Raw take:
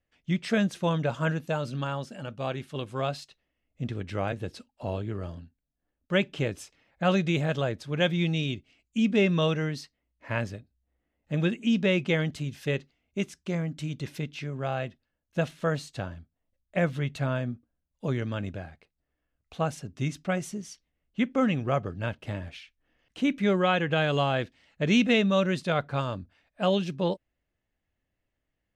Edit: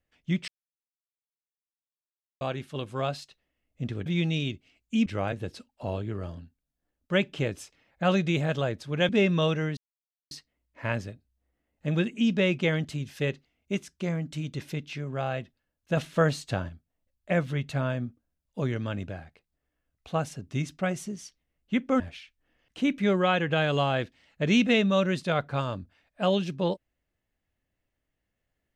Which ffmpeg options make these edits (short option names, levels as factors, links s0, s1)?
-filter_complex "[0:a]asplit=10[s0][s1][s2][s3][s4][s5][s6][s7][s8][s9];[s0]atrim=end=0.48,asetpts=PTS-STARTPTS,afade=t=out:st=0.476:d=0.004:c=hsin[s10];[s1]atrim=start=0.48:end=2.41,asetpts=PTS-STARTPTS,volume=0[s11];[s2]atrim=start=2.41:end=4.062,asetpts=PTS-STARTPTS,afade=t=in:d=0.004:c=hsin[s12];[s3]atrim=start=8.088:end=9.092[s13];[s4]atrim=start=4.058:end=8.092[s14];[s5]atrim=start=9.088:end=9.77,asetpts=PTS-STARTPTS,afade=t=out:st=0.678:d=0.004:c=hsin,apad=pad_dur=0.54[s15];[s6]atrim=start=9.77:end=15.432,asetpts=PTS-STARTPTS,afade=t=in:d=0.004:c=hsin[s16];[s7]atrim=start=15.428:end=16.152,asetpts=PTS-STARTPTS,volume=1.68[s17];[s8]atrim=start=16.148:end=21.462[s18];[s9]atrim=start=22.398[s19];[s10][s11][s12]concat=n=3:v=0:a=1[s20];[s20][s13]acrossfade=d=0.004:c1=hsin:c2=hsin[s21];[s21][s14]acrossfade=d=0.004:c1=hsin:c2=hsin[s22];[s15][s16]concat=n=2:v=0:a=1[s23];[s22][s23]acrossfade=d=0.004:c1=hsin:c2=hsin[s24];[s24][s17]acrossfade=d=0.004:c1=hsin:c2=hsin[s25];[s25][s18]acrossfade=d=0.004:c1=hsin:c2=hsin[s26];[s26][s19]acrossfade=d=0.004:c1=hsin:c2=hsin"